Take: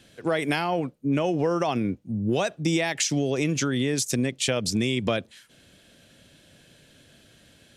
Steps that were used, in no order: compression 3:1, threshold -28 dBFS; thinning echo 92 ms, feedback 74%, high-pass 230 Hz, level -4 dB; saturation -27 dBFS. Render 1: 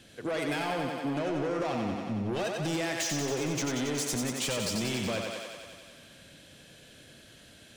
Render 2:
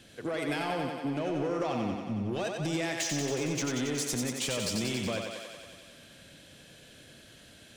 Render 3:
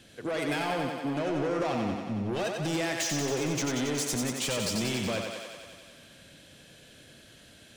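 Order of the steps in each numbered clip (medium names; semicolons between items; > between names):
saturation > thinning echo > compression; compression > saturation > thinning echo; saturation > compression > thinning echo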